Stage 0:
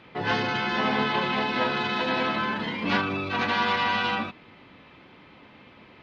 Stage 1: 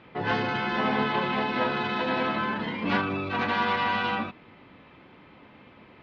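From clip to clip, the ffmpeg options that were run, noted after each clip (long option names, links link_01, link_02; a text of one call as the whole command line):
ffmpeg -i in.wav -af "lowpass=frequency=2400:poles=1" out.wav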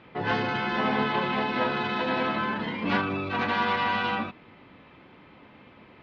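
ffmpeg -i in.wav -af anull out.wav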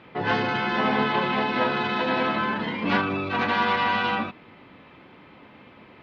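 ffmpeg -i in.wav -af "lowshelf=frequency=83:gain=-5,volume=3dB" out.wav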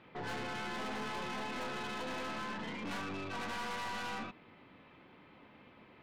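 ffmpeg -i in.wav -af "aeval=exprs='(tanh(31.6*val(0)+0.45)-tanh(0.45))/31.6':channel_layout=same,volume=-8dB" out.wav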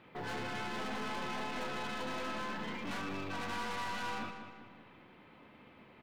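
ffmpeg -i in.wav -filter_complex "[0:a]acrusher=bits=9:mode=log:mix=0:aa=0.000001,asplit=2[link_01][link_02];[link_02]adelay=193,lowpass=frequency=4500:poles=1,volume=-8.5dB,asplit=2[link_03][link_04];[link_04]adelay=193,lowpass=frequency=4500:poles=1,volume=0.47,asplit=2[link_05][link_06];[link_06]adelay=193,lowpass=frequency=4500:poles=1,volume=0.47,asplit=2[link_07][link_08];[link_08]adelay=193,lowpass=frequency=4500:poles=1,volume=0.47,asplit=2[link_09][link_10];[link_10]adelay=193,lowpass=frequency=4500:poles=1,volume=0.47[link_11];[link_01][link_03][link_05][link_07][link_09][link_11]amix=inputs=6:normalize=0" out.wav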